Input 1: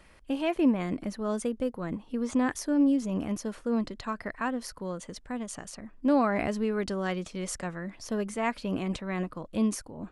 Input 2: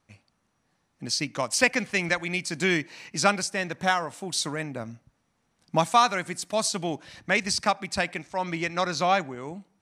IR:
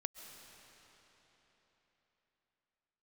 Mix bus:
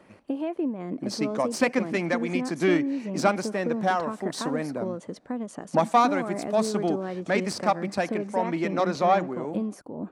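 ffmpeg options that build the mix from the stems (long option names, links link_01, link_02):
-filter_complex "[0:a]acompressor=threshold=-34dB:ratio=6,volume=2dB[link_01];[1:a]aeval=exprs='(tanh(3.98*val(0)+0.55)-tanh(0.55))/3.98':channel_layout=same,volume=1dB,asplit=2[link_02][link_03];[link_03]volume=-22dB[link_04];[2:a]atrim=start_sample=2205[link_05];[link_04][link_05]afir=irnorm=-1:irlink=0[link_06];[link_01][link_02][link_06]amix=inputs=3:normalize=0,highpass=230,tiltshelf=frequency=1200:gain=8.5"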